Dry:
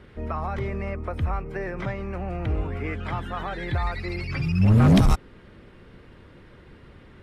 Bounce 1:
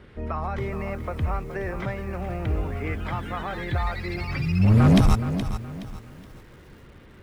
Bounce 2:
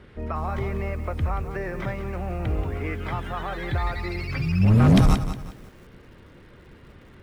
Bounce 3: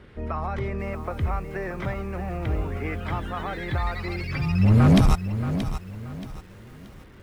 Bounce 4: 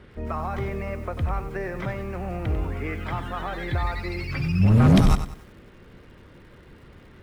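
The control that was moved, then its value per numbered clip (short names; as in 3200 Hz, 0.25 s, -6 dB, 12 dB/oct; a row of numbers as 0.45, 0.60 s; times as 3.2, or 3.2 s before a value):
lo-fi delay, time: 421, 181, 628, 95 ms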